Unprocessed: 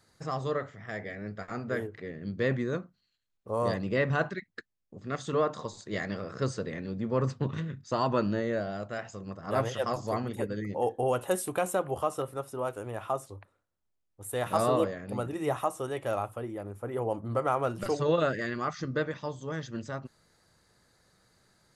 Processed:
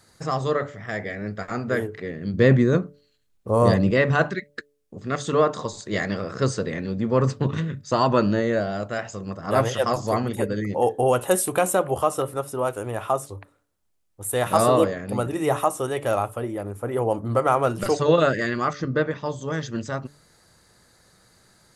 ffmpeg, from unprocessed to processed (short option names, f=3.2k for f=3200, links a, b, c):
-filter_complex "[0:a]asettb=1/sr,asplit=3[a][b][c];[a]atrim=end=2.344[d];[b]atrim=start=2.34:end=3.91,asetpts=PTS-STARTPTS,afade=t=in:d=0.004:c=qsin,afade=t=out:st=1.566:d=0.004:c=qsin,lowshelf=f=410:g=7.5[e];[c]atrim=start=3.906[f];[d][e]acrossfade=d=0.004:c1=hsin:c2=qsin[g];[g][f]acrossfade=d=0.004:c1=qsin:c2=hsin,asettb=1/sr,asplit=3[h][i][j];[h]atrim=end=18.734[k];[i]atrim=start=18.73:end=19.26,asetpts=PTS-STARTPTS,afade=t=in:d=0.004:c=qsin,afade=t=out:st=0.526:d=0.004:c=qsin,lowpass=f=2.5k:p=1[l];[j]atrim=start=19.256[m];[k][l]acrossfade=d=0.004:c1=hsin:c2=qsin[n];[n][m]acrossfade=d=0.004:c1=qsin:c2=hsin,equalizer=f=9.9k:w=0.82:g=4,bandreject=f=144.7:t=h:w=4,bandreject=f=289.4:t=h:w=4,bandreject=f=434.1:t=h:w=4,bandreject=f=578.8:t=h:w=4,volume=8dB"